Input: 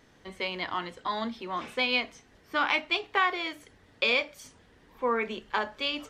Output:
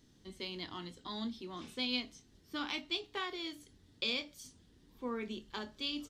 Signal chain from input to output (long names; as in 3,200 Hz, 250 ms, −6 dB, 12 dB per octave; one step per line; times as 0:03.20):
flat-topped bell 1,100 Hz −13 dB 2.8 octaves
double-tracking delay 24 ms −13 dB
level −3 dB